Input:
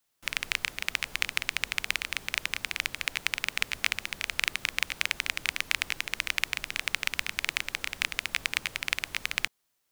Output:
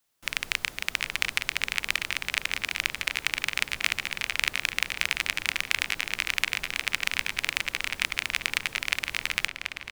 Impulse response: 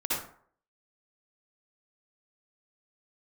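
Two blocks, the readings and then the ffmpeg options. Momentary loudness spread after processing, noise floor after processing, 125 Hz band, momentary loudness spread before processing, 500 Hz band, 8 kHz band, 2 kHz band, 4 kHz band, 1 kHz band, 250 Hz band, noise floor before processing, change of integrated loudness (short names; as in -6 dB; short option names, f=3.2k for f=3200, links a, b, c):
2 LU, -47 dBFS, +3.0 dB, 3 LU, +3.0 dB, +2.0 dB, +2.5 dB, +2.5 dB, +3.0 dB, +3.0 dB, -76 dBFS, +2.5 dB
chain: -filter_complex "[0:a]asplit=2[a][b];[b]adelay=732,lowpass=f=4.2k:p=1,volume=-5dB,asplit=2[c][d];[d]adelay=732,lowpass=f=4.2k:p=1,volume=0.44,asplit=2[e][f];[f]adelay=732,lowpass=f=4.2k:p=1,volume=0.44,asplit=2[g][h];[h]adelay=732,lowpass=f=4.2k:p=1,volume=0.44,asplit=2[i][j];[j]adelay=732,lowpass=f=4.2k:p=1,volume=0.44[k];[a][c][e][g][i][k]amix=inputs=6:normalize=0,volume=1.5dB"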